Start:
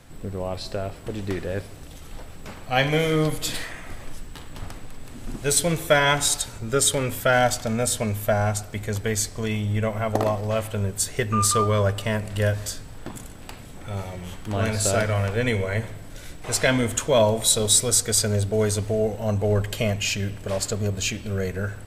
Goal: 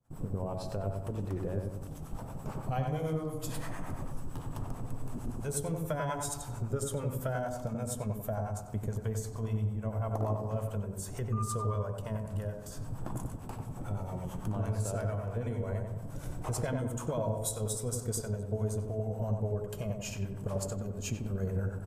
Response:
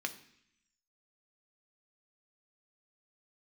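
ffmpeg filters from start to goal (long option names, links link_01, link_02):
-filter_complex "[0:a]agate=range=-33dB:threshold=-35dB:ratio=3:detection=peak,equalizer=frequency=125:width_type=o:width=1:gain=10,equalizer=frequency=1000:width_type=o:width=1:gain=6,equalizer=frequency=2000:width_type=o:width=1:gain=-11,equalizer=frequency=4000:width_type=o:width=1:gain=-10,acompressor=threshold=-32dB:ratio=5,acrossover=split=630[link_01][link_02];[link_01]aeval=exprs='val(0)*(1-0.7/2+0.7/2*cos(2*PI*8.9*n/s))':channel_layout=same[link_03];[link_02]aeval=exprs='val(0)*(1-0.7/2-0.7/2*cos(2*PI*8.9*n/s))':channel_layout=same[link_04];[link_03][link_04]amix=inputs=2:normalize=0,asplit=2[link_05][link_06];[link_06]adelay=93,lowpass=frequency=1300:poles=1,volume=-3dB,asplit=2[link_07][link_08];[link_08]adelay=93,lowpass=frequency=1300:poles=1,volume=0.52,asplit=2[link_09][link_10];[link_10]adelay=93,lowpass=frequency=1300:poles=1,volume=0.52,asplit=2[link_11][link_12];[link_12]adelay=93,lowpass=frequency=1300:poles=1,volume=0.52,asplit=2[link_13][link_14];[link_14]adelay=93,lowpass=frequency=1300:poles=1,volume=0.52,asplit=2[link_15][link_16];[link_16]adelay=93,lowpass=frequency=1300:poles=1,volume=0.52,asplit=2[link_17][link_18];[link_18]adelay=93,lowpass=frequency=1300:poles=1,volume=0.52[link_19];[link_05][link_07][link_09][link_11][link_13][link_15][link_17][link_19]amix=inputs=8:normalize=0,asplit=2[link_20][link_21];[1:a]atrim=start_sample=2205[link_22];[link_21][link_22]afir=irnorm=-1:irlink=0,volume=-10dB[link_23];[link_20][link_23]amix=inputs=2:normalize=0"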